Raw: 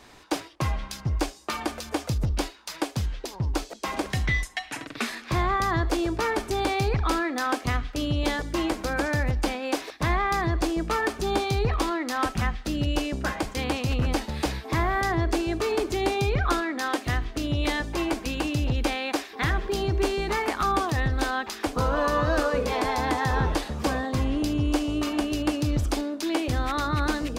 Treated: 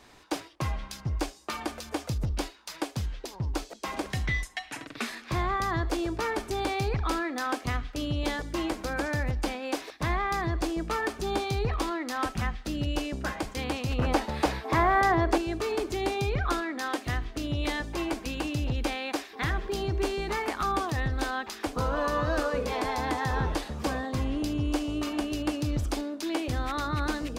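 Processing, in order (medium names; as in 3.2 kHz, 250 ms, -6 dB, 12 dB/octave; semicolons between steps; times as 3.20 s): 13.98–15.38 s: peaking EQ 830 Hz +8.5 dB 2.8 oct; trim -4 dB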